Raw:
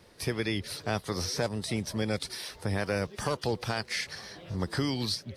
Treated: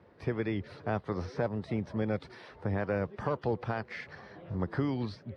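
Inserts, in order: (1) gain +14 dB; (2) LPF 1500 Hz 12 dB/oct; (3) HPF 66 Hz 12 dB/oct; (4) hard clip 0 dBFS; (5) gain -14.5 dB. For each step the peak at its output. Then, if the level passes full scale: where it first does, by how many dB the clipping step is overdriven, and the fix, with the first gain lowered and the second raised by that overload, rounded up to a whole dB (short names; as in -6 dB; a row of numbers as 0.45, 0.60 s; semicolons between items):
-2.5, -3.0, -3.5, -3.5, -18.0 dBFS; no overload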